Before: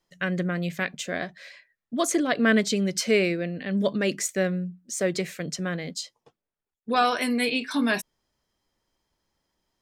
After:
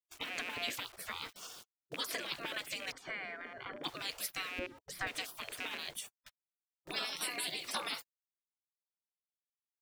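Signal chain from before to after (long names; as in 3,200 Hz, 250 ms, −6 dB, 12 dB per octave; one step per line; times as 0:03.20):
loose part that buzzes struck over −30 dBFS, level −33 dBFS
high-pass filter 180 Hz 12 dB per octave
downward compressor 4 to 1, threshold −34 dBFS, peak gain reduction 15.5 dB
0:00.57–0:01.27: low-shelf EQ 420 Hz +3.5 dB
centre clipping without the shift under −56 dBFS
0:02.92–0:03.84: Savitzky-Golay smoothing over 41 samples
0:04.59–0:05.07: spectral tilt −3 dB per octave
gate on every frequency bin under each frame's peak −20 dB weak
level +10.5 dB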